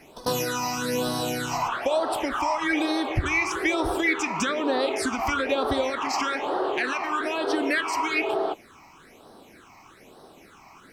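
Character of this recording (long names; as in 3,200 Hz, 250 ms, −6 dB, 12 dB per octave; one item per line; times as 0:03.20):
a quantiser's noise floor 12 bits, dither none
phaser sweep stages 8, 1.1 Hz, lowest notch 460–2,300 Hz
MP3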